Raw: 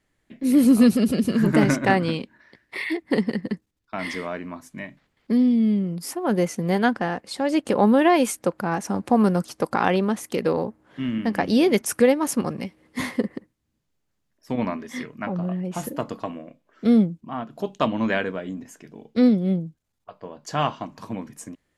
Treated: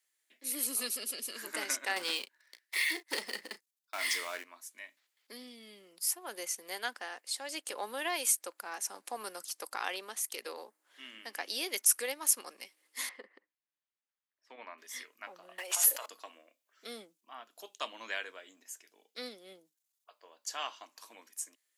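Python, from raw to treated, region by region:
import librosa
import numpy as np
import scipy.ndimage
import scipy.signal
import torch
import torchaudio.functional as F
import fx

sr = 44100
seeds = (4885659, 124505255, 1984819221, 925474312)

y = fx.chain(x, sr, fx.leveller(passes=2),
    fx.doubler(ms=34.0, db=-13), at=(1.96, 4.44))
y = fx.chain(y, sr, fx.lowpass(hz=2200.0, slope=12),
    fx.low_shelf(hz=440.0, db=-5.0), at=(13.09, 14.78))
y = fx.chain(y, sr, fx.highpass(hz=540.0, slope=24),
    fx.env_flatten(amount_pct=100), at=(15.58, 16.06))
y = scipy.signal.sosfilt(scipy.signal.butter(4, 300.0, 'highpass', fs=sr, output='sos'), y)
y = np.diff(y, prepend=0.0)
y = y * librosa.db_to_amplitude(1.5)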